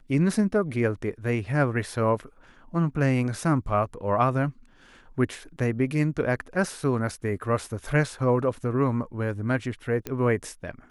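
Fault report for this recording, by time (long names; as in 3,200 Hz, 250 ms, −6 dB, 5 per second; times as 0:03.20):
0:10.07: click −16 dBFS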